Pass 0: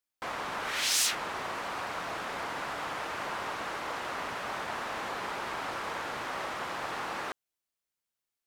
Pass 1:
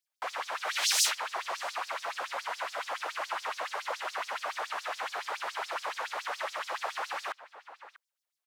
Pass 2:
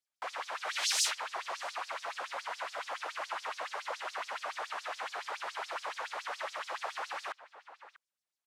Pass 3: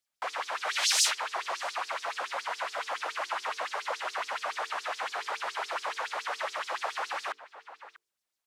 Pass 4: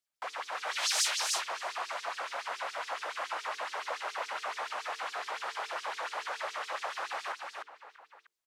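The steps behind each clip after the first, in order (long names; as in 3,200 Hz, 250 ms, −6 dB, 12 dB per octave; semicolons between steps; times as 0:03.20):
slap from a distant wall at 110 metres, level −13 dB; auto-filter high-pass sine 7.1 Hz 540–5,700 Hz; level −1.5 dB
low-pass filter 11,000 Hz 12 dB per octave; level −3.5 dB
mains-hum notches 50/100/150/200/250/300/350/400/450 Hz; level +5 dB
single-tap delay 304 ms −3.5 dB; level −4.5 dB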